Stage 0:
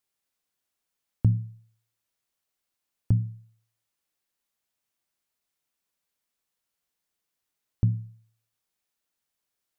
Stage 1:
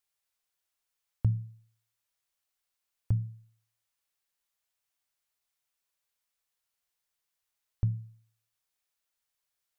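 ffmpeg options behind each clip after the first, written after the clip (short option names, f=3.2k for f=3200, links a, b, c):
-af "equalizer=f=240:w=0.77:g=-11,volume=-1dB"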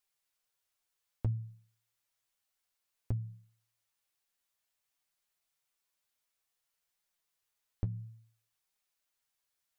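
-af "acompressor=threshold=-31dB:ratio=6,flanger=delay=4.7:depth=6.8:regen=35:speed=0.57:shape=triangular,volume=4dB"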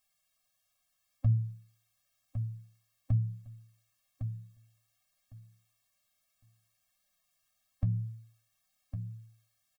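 -af "alimiter=level_in=4dB:limit=-24dB:level=0:latency=1:release=43,volume=-4dB,aecho=1:1:1107|2214|3321:0.376|0.0639|0.0109,afftfilt=real='re*eq(mod(floor(b*sr/1024/260),2),0)':imag='im*eq(mod(floor(b*sr/1024/260),2),0)':win_size=1024:overlap=0.75,volume=9dB"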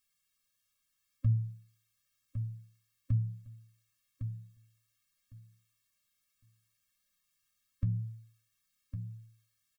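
-af "asuperstop=centerf=780:order=4:qfactor=1.3,volume=-1.5dB"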